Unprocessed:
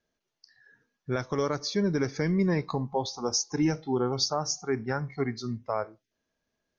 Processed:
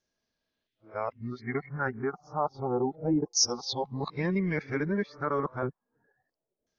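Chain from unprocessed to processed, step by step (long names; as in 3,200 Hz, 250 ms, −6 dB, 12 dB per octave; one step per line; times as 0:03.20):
played backwards from end to start
auto-filter low-pass saw down 0.3 Hz 500–6,100 Hz
level −3.5 dB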